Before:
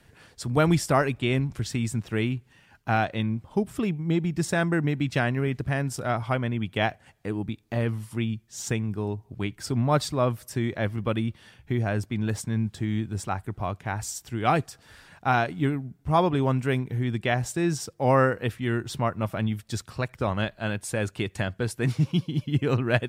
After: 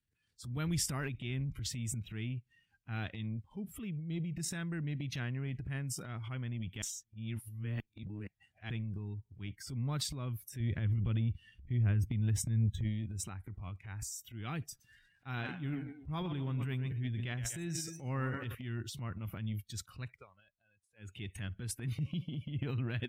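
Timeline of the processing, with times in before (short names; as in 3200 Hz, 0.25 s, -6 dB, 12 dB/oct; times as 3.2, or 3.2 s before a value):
6.82–8.7 reverse
10.6–12.84 low shelf 160 Hz +11.5 dB
14.6–18.55 warbling echo 0.121 s, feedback 51%, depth 87 cents, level -12 dB
20.07–21.13 dip -20.5 dB, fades 0.19 s
whole clip: spectral noise reduction 19 dB; passive tone stack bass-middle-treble 6-0-2; transient shaper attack -5 dB, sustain +9 dB; gain +5 dB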